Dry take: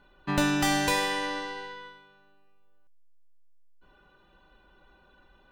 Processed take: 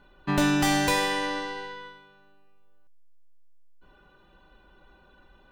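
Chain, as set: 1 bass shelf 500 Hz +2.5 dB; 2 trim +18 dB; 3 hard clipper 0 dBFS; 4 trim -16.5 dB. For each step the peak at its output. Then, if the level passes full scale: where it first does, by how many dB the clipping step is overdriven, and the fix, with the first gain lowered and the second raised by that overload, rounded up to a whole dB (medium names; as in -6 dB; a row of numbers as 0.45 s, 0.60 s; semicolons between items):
-10.5 dBFS, +7.5 dBFS, 0.0 dBFS, -16.5 dBFS; step 2, 7.5 dB; step 2 +10 dB, step 4 -8.5 dB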